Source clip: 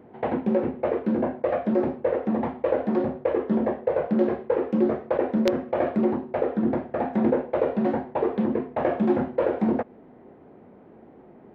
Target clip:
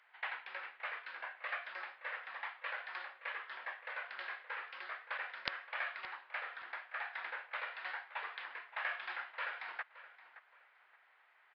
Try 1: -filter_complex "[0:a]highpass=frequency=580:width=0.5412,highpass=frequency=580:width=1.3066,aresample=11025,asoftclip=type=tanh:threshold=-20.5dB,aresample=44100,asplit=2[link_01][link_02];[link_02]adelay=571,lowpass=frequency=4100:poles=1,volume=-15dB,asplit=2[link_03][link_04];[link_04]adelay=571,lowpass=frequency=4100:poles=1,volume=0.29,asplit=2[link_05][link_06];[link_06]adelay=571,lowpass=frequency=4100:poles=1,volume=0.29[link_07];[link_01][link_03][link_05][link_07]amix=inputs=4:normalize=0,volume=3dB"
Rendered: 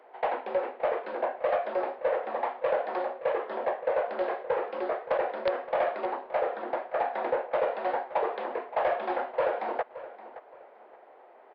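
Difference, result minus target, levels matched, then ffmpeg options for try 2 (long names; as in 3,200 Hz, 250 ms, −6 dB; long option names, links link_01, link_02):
500 Hz band +16.5 dB
-filter_complex "[0:a]highpass=frequency=1500:width=0.5412,highpass=frequency=1500:width=1.3066,aresample=11025,asoftclip=type=tanh:threshold=-20.5dB,aresample=44100,asplit=2[link_01][link_02];[link_02]adelay=571,lowpass=frequency=4100:poles=1,volume=-15dB,asplit=2[link_03][link_04];[link_04]adelay=571,lowpass=frequency=4100:poles=1,volume=0.29,asplit=2[link_05][link_06];[link_06]adelay=571,lowpass=frequency=4100:poles=1,volume=0.29[link_07];[link_01][link_03][link_05][link_07]amix=inputs=4:normalize=0,volume=3dB"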